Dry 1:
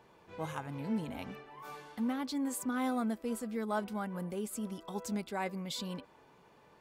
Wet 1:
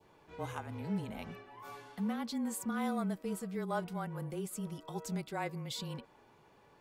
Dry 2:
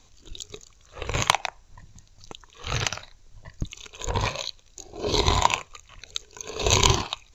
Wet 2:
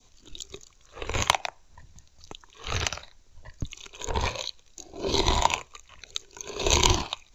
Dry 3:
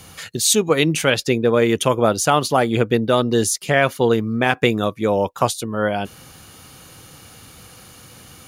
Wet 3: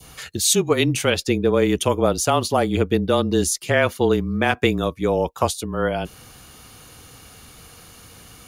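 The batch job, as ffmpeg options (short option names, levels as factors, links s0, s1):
-af "afreqshift=-26,adynamicequalizer=threshold=0.02:dfrequency=1600:dqfactor=1.1:tfrequency=1600:tqfactor=1.1:attack=5:release=100:ratio=0.375:range=2:mode=cutabove:tftype=bell,volume=0.841"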